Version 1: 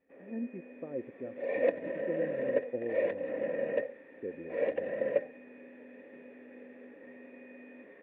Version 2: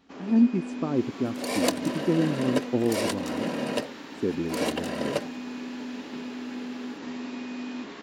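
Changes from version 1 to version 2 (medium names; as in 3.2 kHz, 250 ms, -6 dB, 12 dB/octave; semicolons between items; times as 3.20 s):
second sound -6.0 dB; master: remove cascade formant filter e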